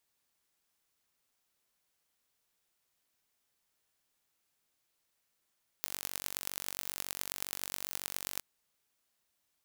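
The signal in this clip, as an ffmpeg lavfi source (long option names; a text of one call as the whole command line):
ffmpeg -f lavfi -i "aevalsrc='0.447*eq(mod(n,932),0)*(0.5+0.5*eq(mod(n,4660),0))':duration=2.57:sample_rate=44100" out.wav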